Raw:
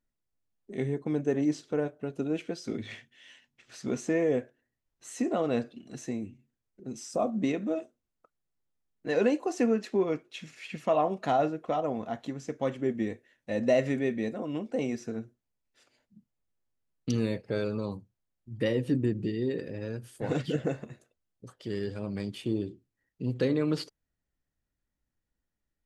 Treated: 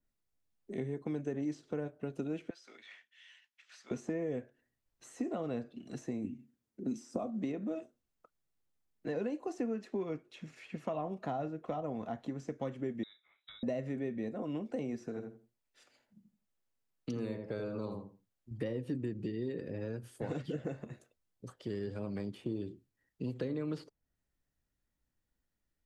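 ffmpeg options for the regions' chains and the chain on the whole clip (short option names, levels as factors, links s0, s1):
-filter_complex "[0:a]asettb=1/sr,asplit=3[s0][s1][s2];[s0]atrim=end=2.504[s3];[s1]atrim=start=2.5:end=3.91,asetpts=PTS-STARTPTS,afade=t=in:d=0.004:c=qsin,afade=t=out:st=1.406:d=0.004:c=qsin,highpass=1500,highshelf=f=6700:g=-11.5[s4];[s2]atrim=start=3.906[s5];[s3][s4]acrossfade=d=0.004:c1=hsin:c2=qsin[s6];[s6][s5]acrossfade=d=0.004:c1=qsin:c2=hsin,asettb=1/sr,asplit=3[s7][s8][s9];[s7]atrim=end=6.244[s10];[s8]atrim=start=6.24:end=7.19,asetpts=PTS-STARTPTS,afade=t=in:d=0.004:c=qsin,afade=t=out:st=0.946:d=0.004:c=qsin,highpass=61,equalizer=f=250:w=1.4:g=12.5[s11];[s9]atrim=start=7.186[s12];[s10][s11]acrossfade=d=0.004:c1=hsin:c2=qsin[s13];[s13][s12]acrossfade=d=0.004:c1=qsin:c2=hsin,asettb=1/sr,asplit=3[s14][s15][s16];[s14]atrim=end=13.034[s17];[s15]atrim=start=13.03:end=13.63,asetpts=PTS-STARTPTS,afade=t=in:d=0.004:c=qsin,afade=t=out:st=0.596:d=0.004:c=qsin,acompressor=threshold=0.0178:ratio=5:attack=3.2:release=140:knee=1:detection=peak,lowpass=f=3400:t=q:w=0.5098,lowpass=f=3400:t=q:w=0.6013,lowpass=f=3400:t=q:w=0.9,lowpass=f=3400:t=q:w=2.563,afreqshift=-4000[s18];[s16]atrim=start=13.626[s19];[s17][s18]acrossfade=d=0.004:c1=hsin:c2=qsin[s20];[s20][s19]acrossfade=d=0.004:c1=qsin:c2=hsin,asettb=1/sr,asplit=3[s21][s22][s23];[s21]atrim=end=15.084[s24];[s22]atrim=start=15.08:end=18.51,asetpts=PTS-STARTPTS,afade=t=in:d=0.004:c=qsin,afade=t=out:st=3.426:d=0.004:c=qsin,lowshelf=f=280:g=-8,asplit=2[s25][s26];[s26]adelay=83,lowpass=f=1200:p=1,volume=0.562,asplit=2[s27][s28];[s28]adelay=83,lowpass=f=1200:p=1,volume=0.26,asplit=2[s29][s30];[s30]adelay=83,lowpass=f=1200:p=1,volume=0.26[s31];[s25][s27][s29][s31]amix=inputs=4:normalize=0,atrim=end_sample=151263[s32];[s23]atrim=start=18.506[s33];[s24][s32]acrossfade=d=0.004:c1=hsin:c2=qsin[s34];[s34][s33]acrossfade=d=0.004:c1=qsin:c2=hsin,acrossover=split=230|1400[s35][s36][s37];[s35]acompressor=threshold=0.00794:ratio=4[s38];[s36]acompressor=threshold=0.0126:ratio=4[s39];[s37]acompressor=threshold=0.00141:ratio=4[s40];[s38][s39][s40]amix=inputs=3:normalize=0,adynamicequalizer=threshold=0.00141:dfrequency=2500:dqfactor=0.7:tfrequency=2500:tqfactor=0.7:attack=5:release=100:ratio=0.375:range=1.5:mode=cutabove:tftype=highshelf"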